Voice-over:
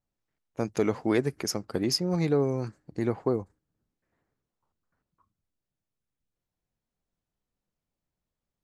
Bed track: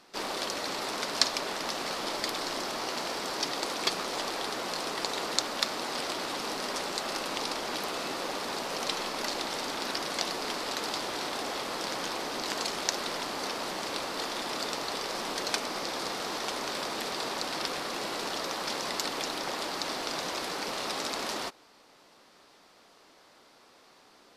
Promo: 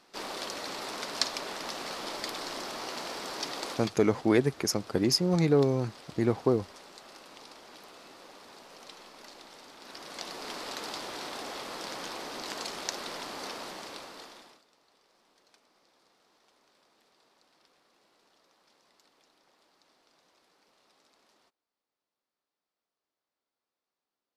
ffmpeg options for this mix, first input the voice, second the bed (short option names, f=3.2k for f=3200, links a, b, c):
-filter_complex "[0:a]adelay=3200,volume=1.5dB[a];[1:a]volume=8dB,afade=t=out:st=3.71:d=0.21:silence=0.223872,afade=t=in:st=9.79:d=0.8:silence=0.251189,afade=t=out:st=13.51:d=1.11:silence=0.0375837[b];[a][b]amix=inputs=2:normalize=0"